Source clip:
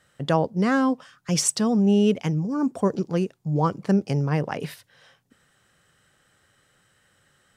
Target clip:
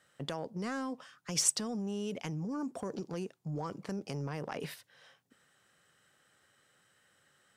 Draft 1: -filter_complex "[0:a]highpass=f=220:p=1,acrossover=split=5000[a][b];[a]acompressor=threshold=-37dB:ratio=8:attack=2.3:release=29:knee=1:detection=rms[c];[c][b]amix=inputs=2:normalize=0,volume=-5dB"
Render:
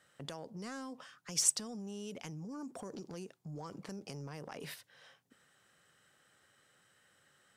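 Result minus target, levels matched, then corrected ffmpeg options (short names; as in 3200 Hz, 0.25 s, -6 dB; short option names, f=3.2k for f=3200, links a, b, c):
compressor: peak gain reduction +7.5 dB
-filter_complex "[0:a]highpass=f=220:p=1,acrossover=split=5000[a][b];[a]acompressor=threshold=-28.5dB:ratio=8:attack=2.3:release=29:knee=1:detection=rms[c];[c][b]amix=inputs=2:normalize=0,volume=-5dB"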